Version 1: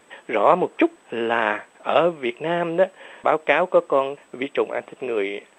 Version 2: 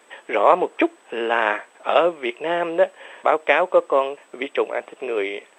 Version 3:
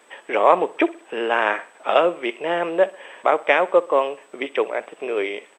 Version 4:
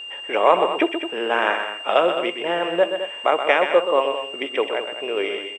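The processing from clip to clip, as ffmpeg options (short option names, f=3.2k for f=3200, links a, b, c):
-af "highpass=340,volume=1.5dB"
-af "aecho=1:1:63|126|189:0.1|0.043|0.0185"
-af "aecho=1:1:125.4|212.8:0.398|0.282,aeval=exprs='val(0)+0.0282*sin(2*PI*2800*n/s)':c=same,volume=-1dB"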